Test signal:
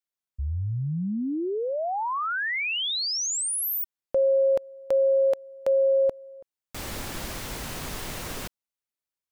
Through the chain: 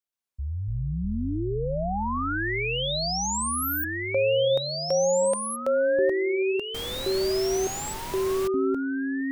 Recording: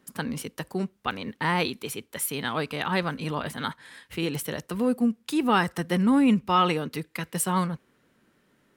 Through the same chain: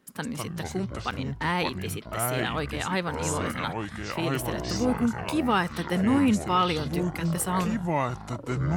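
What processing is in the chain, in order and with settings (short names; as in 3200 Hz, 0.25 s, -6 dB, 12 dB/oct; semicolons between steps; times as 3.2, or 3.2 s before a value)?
echoes that change speed 0.126 s, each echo -6 st, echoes 3; gain -2 dB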